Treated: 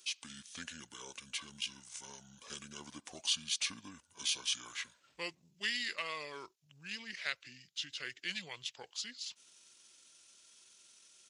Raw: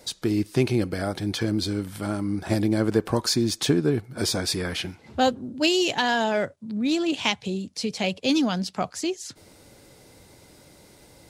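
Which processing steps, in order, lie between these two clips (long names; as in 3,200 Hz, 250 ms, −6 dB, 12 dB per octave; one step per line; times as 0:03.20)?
pitch shifter −7 semitones
first difference
level −1 dB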